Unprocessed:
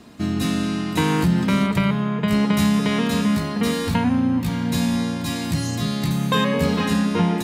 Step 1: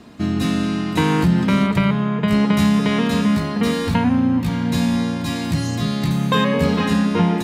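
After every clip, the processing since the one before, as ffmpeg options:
-af "highshelf=f=6200:g=-7.5,volume=1.33"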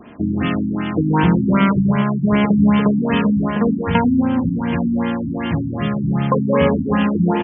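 -filter_complex "[0:a]bass=f=250:g=-5,treble=f=4000:g=12,asplit=2[s0][s1];[s1]adelay=116.6,volume=0.398,highshelf=f=4000:g=-2.62[s2];[s0][s2]amix=inputs=2:normalize=0,afftfilt=real='re*lt(b*sr/1024,310*pow(3500/310,0.5+0.5*sin(2*PI*2.6*pts/sr)))':imag='im*lt(b*sr/1024,310*pow(3500/310,0.5+0.5*sin(2*PI*2.6*pts/sr)))':win_size=1024:overlap=0.75,volume=1.68"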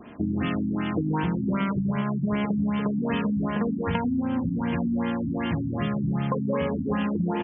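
-af "acompressor=threshold=0.126:ratio=10,volume=0.631"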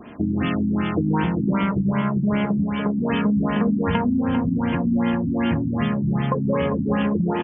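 -af "aecho=1:1:397|794|1191|1588|1985:0.376|0.165|0.0728|0.032|0.0141,volume=1.58"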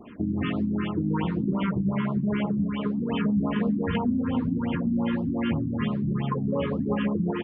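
-af "flanger=delay=2.4:depth=8.6:regen=85:speed=1.3:shape=sinusoidal,afftfilt=real='re*(1-between(b*sr/1024,620*pow(2000/620,0.5+0.5*sin(2*PI*5.8*pts/sr))/1.41,620*pow(2000/620,0.5+0.5*sin(2*PI*5.8*pts/sr))*1.41))':imag='im*(1-between(b*sr/1024,620*pow(2000/620,0.5+0.5*sin(2*PI*5.8*pts/sr))/1.41,620*pow(2000/620,0.5+0.5*sin(2*PI*5.8*pts/sr))*1.41))':win_size=1024:overlap=0.75"

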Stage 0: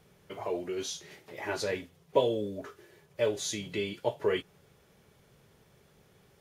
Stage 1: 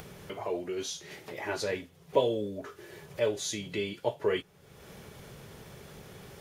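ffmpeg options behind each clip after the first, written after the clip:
-af "acompressor=mode=upward:threshold=0.0178:ratio=2.5"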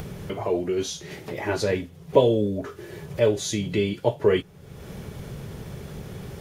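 -af "lowshelf=f=340:g=11,volume=1.68"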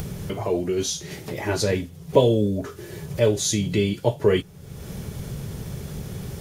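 -af "bass=f=250:g=5,treble=f=4000:g=8"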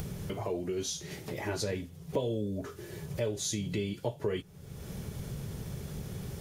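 -af "acompressor=threshold=0.0562:ratio=2.5,volume=0.473"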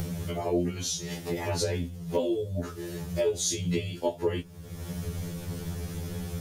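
-af "afftfilt=real='re*2*eq(mod(b,4),0)':imag='im*2*eq(mod(b,4),0)':win_size=2048:overlap=0.75,volume=2.37"

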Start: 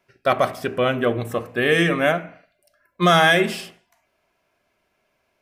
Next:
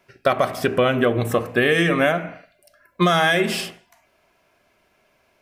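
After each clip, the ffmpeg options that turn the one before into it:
-af "acompressor=threshold=0.0891:ratio=10,volume=2.24"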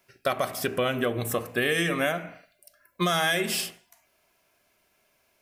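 -af "crystalizer=i=2.5:c=0,volume=0.376"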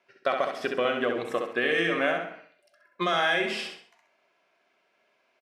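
-af "acrusher=bits=7:mode=log:mix=0:aa=0.000001,highpass=290,lowpass=3200,aecho=1:1:66|132|198|264:0.562|0.202|0.0729|0.0262"

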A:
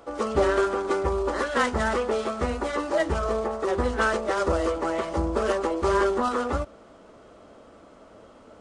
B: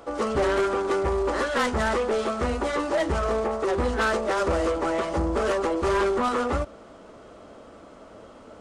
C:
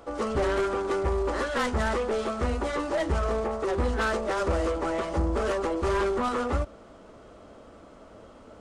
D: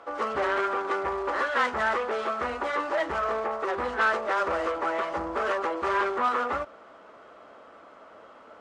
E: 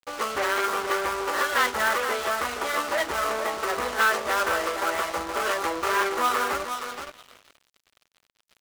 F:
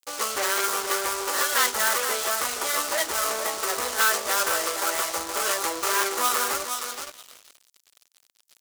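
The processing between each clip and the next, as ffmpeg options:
-af "asoftclip=type=tanh:threshold=0.0794,volume=1.5"
-af "lowshelf=f=110:g=7,volume=0.668"
-af "bandpass=f=1400:t=q:w=0.88:csg=0,volume=1.88"
-filter_complex "[0:a]asplit=2[s0][s1];[s1]adelay=471,lowpass=f=3500:p=1,volume=0.473,asplit=2[s2][s3];[s3]adelay=471,lowpass=f=3500:p=1,volume=0.23,asplit=2[s4][s5];[s5]adelay=471,lowpass=f=3500:p=1,volume=0.23[s6];[s0][s2][s4][s6]amix=inputs=4:normalize=0,aeval=exprs='sgn(val(0))*max(abs(val(0))-0.00841,0)':c=same,crystalizer=i=4.5:c=0"
-af "bass=f=250:g=-5,treble=f=4000:g=14,volume=0.794"

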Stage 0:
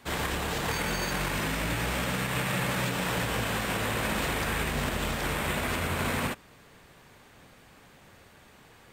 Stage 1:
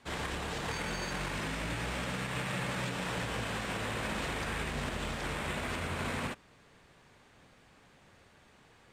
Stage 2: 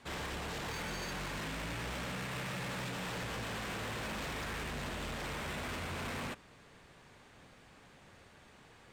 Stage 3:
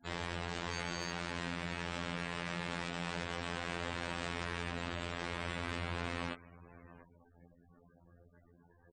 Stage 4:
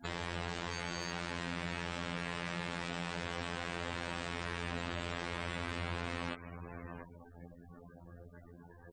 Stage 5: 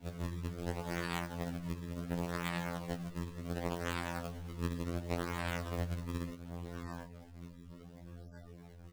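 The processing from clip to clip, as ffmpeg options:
-af "lowpass=8700,volume=0.501"
-af "asoftclip=type=tanh:threshold=0.0112,volume=1.26"
-af "aecho=1:1:702:0.141,afftfilt=real='re*gte(hypot(re,im),0.00355)':imag='im*gte(hypot(re,im),0.00355)':win_size=1024:overlap=0.75,afftfilt=real='hypot(re,im)*cos(PI*b)':imag='0':win_size=2048:overlap=0.75,volume=1.5"
-af "alimiter=level_in=2.11:limit=0.0631:level=0:latency=1:release=156,volume=0.473,volume=2.99"
-af "acrusher=samples=34:mix=1:aa=0.000001:lfo=1:lforange=54.4:lforate=0.69,flanger=delay=9.8:depth=3.4:regen=-44:speed=0.35:shape=triangular,afftfilt=real='re*2*eq(mod(b,4),0)':imag='im*2*eq(mod(b,4),0)':win_size=2048:overlap=0.75,volume=1.33"

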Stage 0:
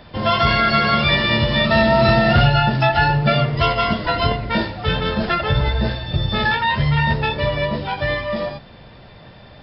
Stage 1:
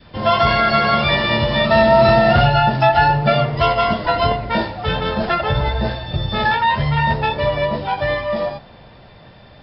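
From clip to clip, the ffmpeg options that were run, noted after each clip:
-af "adynamicequalizer=threshold=0.0251:dfrequency=770:dqfactor=1.2:tfrequency=770:tqfactor=1.2:attack=5:release=100:ratio=0.375:range=3.5:mode=boostabove:tftype=bell,volume=0.841"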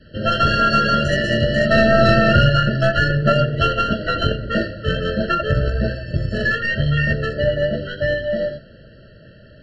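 -af "aeval=exprs='0.794*(cos(1*acos(clip(val(0)/0.794,-1,1)))-cos(1*PI/2))+0.2*(cos(2*acos(clip(val(0)/0.794,-1,1)))-cos(2*PI/2))+0.02*(cos(7*acos(clip(val(0)/0.794,-1,1)))-cos(7*PI/2))':c=same,afftfilt=real='re*eq(mod(floor(b*sr/1024/660),2),0)':imag='im*eq(mod(floor(b*sr/1024/660),2),0)':win_size=1024:overlap=0.75,volume=1.19"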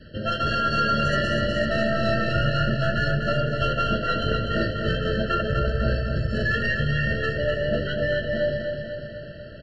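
-af "areverse,acompressor=threshold=0.0562:ratio=4,areverse,aecho=1:1:248|496|744|992|1240|1488|1736|1984:0.531|0.308|0.179|0.104|0.0601|0.0348|0.0202|0.0117,volume=1.26"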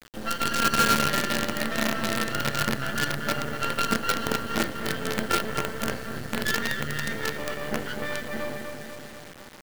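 -af "highpass=180,equalizer=f=250:t=q:w=4:g=7,equalizer=f=640:t=q:w=4:g=-8,equalizer=f=1500:t=q:w=4:g=3,equalizer=f=2400:t=q:w=4:g=-7,equalizer=f=3600:t=q:w=4:g=-5,lowpass=f=5200:w=0.5412,lowpass=f=5200:w=1.3066,acrusher=bits=4:dc=4:mix=0:aa=0.000001"

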